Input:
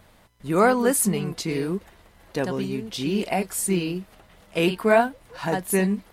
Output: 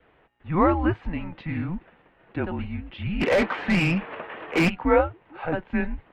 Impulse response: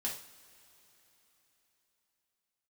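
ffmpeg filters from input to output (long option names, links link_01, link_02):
-filter_complex "[0:a]adynamicequalizer=threshold=0.00794:dfrequency=1100:dqfactor=6.3:tfrequency=1100:tqfactor=6.3:attack=5:release=100:ratio=0.375:range=2.5:mode=boostabove:tftype=bell,highpass=frequency=220:width_type=q:width=0.5412,highpass=frequency=220:width_type=q:width=1.307,lowpass=frequency=3000:width_type=q:width=0.5176,lowpass=frequency=3000:width_type=q:width=0.7071,lowpass=frequency=3000:width_type=q:width=1.932,afreqshift=-170,asplit=3[link_01][link_02][link_03];[link_01]afade=type=out:start_time=3.2:duration=0.02[link_04];[link_02]asplit=2[link_05][link_06];[link_06]highpass=frequency=720:poles=1,volume=30dB,asoftclip=type=tanh:threshold=-10dB[link_07];[link_05][link_07]amix=inputs=2:normalize=0,lowpass=frequency=1800:poles=1,volume=-6dB,afade=type=in:start_time=3.2:duration=0.02,afade=type=out:start_time=4.68:duration=0.02[link_08];[link_03]afade=type=in:start_time=4.68:duration=0.02[link_09];[link_04][link_08][link_09]amix=inputs=3:normalize=0,volume=-1.5dB"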